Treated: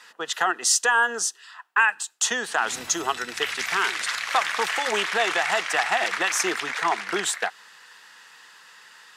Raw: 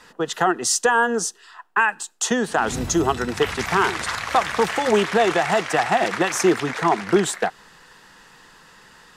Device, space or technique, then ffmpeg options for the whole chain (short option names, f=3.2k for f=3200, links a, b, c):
filter by subtraction: -filter_complex "[0:a]asplit=2[a][b];[b]lowpass=2.1k,volume=-1[c];[a][c]amix=inputs=2:normalize=0,asettb=1/sr,asplit=3[d][e][f];[d]atrim=end=3.204[g];[e]atrim=start=3.2:end=4.29,asetpts=PTS-STARTPTS,afade=t=in:d=0.004:c=qsin,afade=t=out:st=1.086:d=0.004:c=qsin,equalizer=f=930:w=1.3:g=-5.5[h];[f]atrim=start=4.286[i];[g][h]acrossfade=d=0.004:c1=hsin:c2=qsin[j];[j][i]acrossfade=d=0.004:c1=qsin:c2=hsin"